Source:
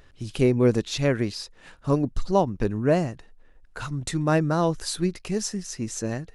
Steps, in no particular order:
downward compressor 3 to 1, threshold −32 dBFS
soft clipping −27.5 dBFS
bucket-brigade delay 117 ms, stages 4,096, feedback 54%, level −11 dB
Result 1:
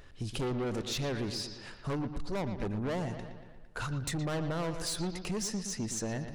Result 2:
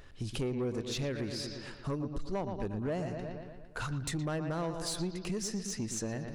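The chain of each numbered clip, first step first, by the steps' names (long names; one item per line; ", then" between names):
soft clipping, then bucket-brigade delay, then downward compressor
bucket-brigade delay, then downward compressor, then soft clipping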